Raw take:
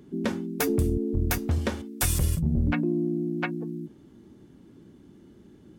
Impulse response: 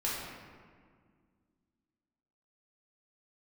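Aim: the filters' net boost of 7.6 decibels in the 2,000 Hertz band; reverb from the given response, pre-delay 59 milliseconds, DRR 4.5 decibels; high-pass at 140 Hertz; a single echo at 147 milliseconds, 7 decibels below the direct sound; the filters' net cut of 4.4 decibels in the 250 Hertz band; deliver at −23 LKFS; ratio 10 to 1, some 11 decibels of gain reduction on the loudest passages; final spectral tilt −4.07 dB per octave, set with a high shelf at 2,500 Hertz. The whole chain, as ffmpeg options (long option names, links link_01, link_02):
-filter_complex "[0:a]highpass=140,equalizer=frequency=250:width_type=o:gain=-5.5,equalizer=frequency=2000:width_type=o:gain=7.5,highshelf=frequency=2500:gain=5,acompressor=threshold=-30dB:ratio=10,aecho=1:1:147:0.447,asplit=2[link_01][link_02];[1:a]atrim=start_sample=2205,adelay=59[link_03];[link_02][link_03]afir=irnorm=-1:irlink=0,volume=-10.5dB[link_04];[link_01][link_04]amix=inputs=2:normalize=0,volume=10.5dB"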